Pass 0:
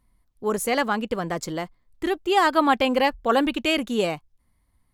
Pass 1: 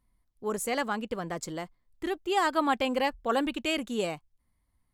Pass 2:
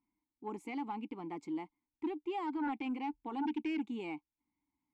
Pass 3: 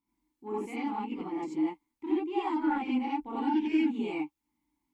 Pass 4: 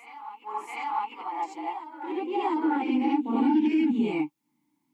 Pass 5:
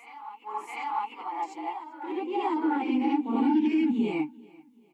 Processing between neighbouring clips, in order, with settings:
dynamic bell 7.9 kHz, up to +6 dB, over -53 dBFS, Q 3.1; trim -7 dB
peak limiter -22 dBFS, peak gain reduction 9 dB; vowel filter u; sine folder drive 7 dB, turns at -25.5 dBFS; trim -5 dB
gated-style reverb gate 110 ms rising, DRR -7.5 dB; trim -2 dB
peak limiter -24.5 dBFS, peak gain reduction 6.5 dB; reverse echo 699 ms -12 dB; high-pass sweep 1 kHz -> 160 Hz, 1.09–4.13 s; trim +4 dB
feedback delay 389 ms, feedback 39%, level -24 dB; trim -1 dB

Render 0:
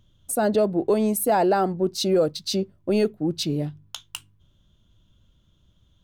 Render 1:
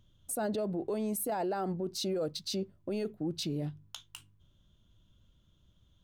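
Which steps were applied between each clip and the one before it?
peak limiter -21.5 dBFS, peak gain reduction 10 dB; trim -5 dB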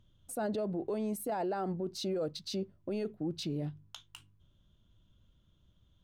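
treble shelf 6.1 kHz -8.5 dB; trim -1 dB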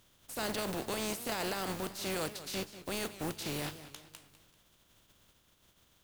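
spectral contrast reduction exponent 0.38; modulated delay 195 ms, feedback 47%, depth 189 cents, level -14 dB; trim -1.5 dB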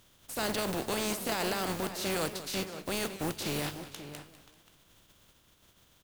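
echo from a far wall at 91 m, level -11 dB; trim +3.5 dB

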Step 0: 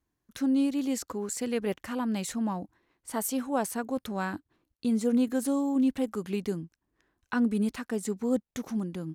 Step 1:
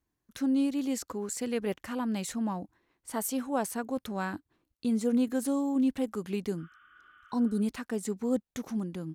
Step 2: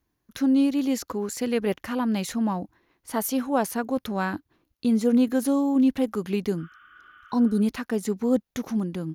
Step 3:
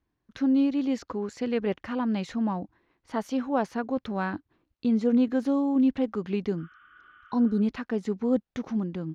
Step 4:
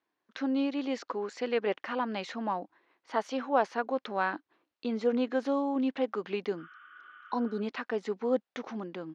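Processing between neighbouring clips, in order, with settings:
spectral replace 6.60–7.57 s, 1.1–3.6 kHz before; trim -1.5 dB
peaking EQ 8.1 kHz -14.5 dB 0.21 oct; trim +6.5 dB
distance through air 160 m; trim -2 dB
band-pass 460–5200 Hz; trim +2.5 dB

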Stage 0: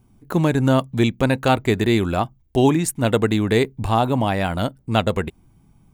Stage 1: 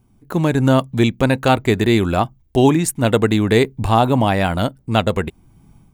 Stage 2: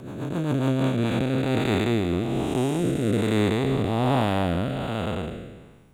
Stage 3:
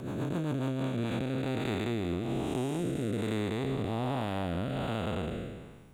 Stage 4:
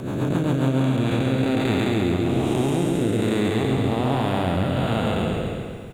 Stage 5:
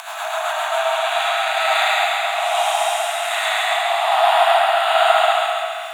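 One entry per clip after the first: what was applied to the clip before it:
level rider; trim -1 dB
spectral blur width 636 ms; rotary cabinet horn 7.5 Hz, later 1.2 Hz, at 0.40 s; bass shelf 170 Hz -4.5 dB
compression 6:1, threshold -29 dBFS, peak gain reduction 11.5 dB
feedback delay 136 ms, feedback 57%, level -4 dB; trim +8.5 dB
brick-wall FIR high-pass 630 Hz; algorithmic reverb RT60 0.74 s, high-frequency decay 0.65×, pre-delay 65 ms, DRR -7 dB; tape noise reduction on one side only encoder only; trim +5.5 dB

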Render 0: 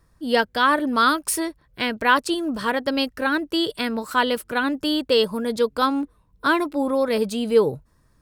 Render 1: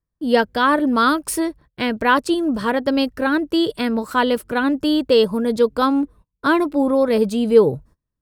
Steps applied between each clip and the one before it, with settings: gate -48 dBFS, range -28 dB; tilt shelf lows +4 dB, about 840 Hz; trim +2.5 dB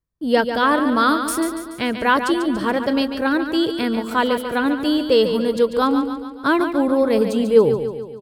feedback delay 143 ms, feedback 54%, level -8.5 dB; trim -1 dB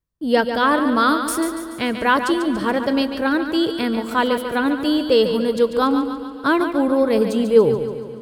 reverberation RT60 4.2 s, pre-delay 17 ms, DRR 18 dB

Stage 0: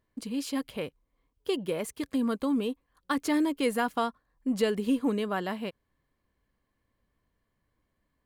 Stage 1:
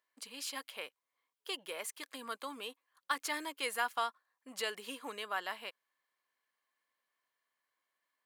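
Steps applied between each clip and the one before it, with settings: high-pass 1 kHz 12 dB/octave; trim -1 dB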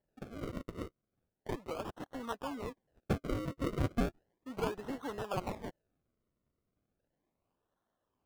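bass shelf 320 Hz +9.5 dB; decimation with a swept rate 36×, swing 100% 0.35 Hz; treble shelf 2.8 kHz -10 dB; trim +2 dB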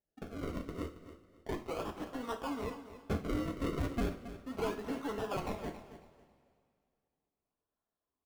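waveshaping leveller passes 2; feedback delay 274 ms, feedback 24%, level -13 dB; two-slope reverb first 0.32 s, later 2.4 s, from -19 dB, DRR 3.5 dB; trim -7 dB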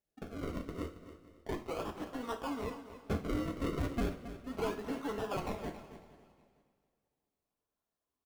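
feedback delay 461 ms, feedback 26%, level -22 dB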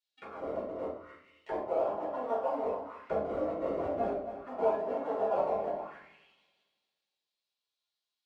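in parallel at -11 dB: integer overflow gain 36 dB; on the sum: auto-wah 660–3900 Hz, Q 3.9, down, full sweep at -37.5 dBFS; simulated room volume 300 m³, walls furnished, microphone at 4.6 m; trim +6 dB

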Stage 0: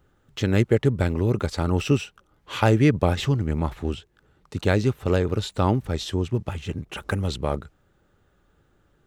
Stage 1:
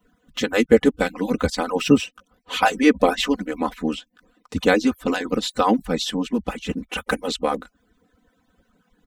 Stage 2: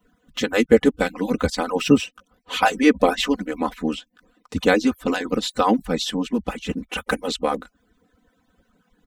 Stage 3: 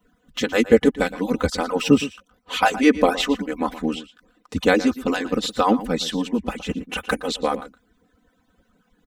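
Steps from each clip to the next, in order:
harmonic-percussive separation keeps percussive; comb 4 ms, depth 91%; trim +4 dB
no audible change
echo from a far wall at 20 m, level -15 dB

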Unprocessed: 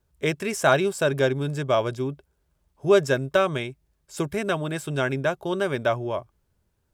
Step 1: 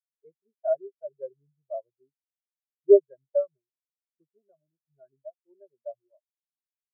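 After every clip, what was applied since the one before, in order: dynamic bell 740 Hz, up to +5 dB, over -32 dBFS, Q 0.79; spectral contrast expander 4:1; trim -3.5 dB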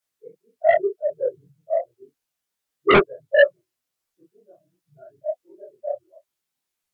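phase randomisation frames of 50 ms; sine folder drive 14 dB, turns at -5.5 dBFS; detune thickener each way 50 cents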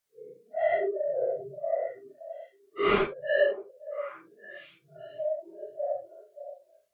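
phase randomisation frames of 200 ms; compression 2:1, threshold -28 dBFS, peak gain reduction 11 dB; repeats whose band climbs or falls 573 ms, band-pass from 520 Hz, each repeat 1.4 oct, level -11 dB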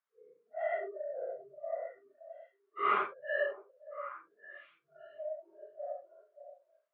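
band-pass filter 1.2 kHz, Q 2.3; trim +1.5 dB

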